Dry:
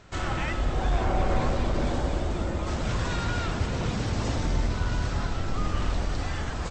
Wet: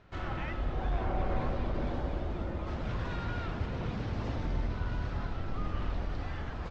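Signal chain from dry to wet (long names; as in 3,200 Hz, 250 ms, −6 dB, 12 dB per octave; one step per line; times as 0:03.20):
high-frequency loss of the air 220 metres
level −6.5 dB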